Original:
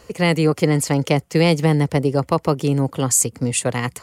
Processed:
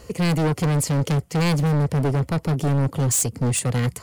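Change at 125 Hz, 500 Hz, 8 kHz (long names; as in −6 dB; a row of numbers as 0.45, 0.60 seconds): +0.5, −7.0, −4.0 decibels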